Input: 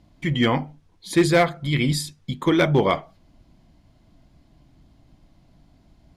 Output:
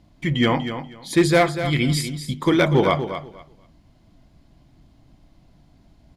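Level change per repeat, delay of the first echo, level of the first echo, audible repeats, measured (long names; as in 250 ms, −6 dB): −14.5 dB, 242 ms, −10.0 dB, 2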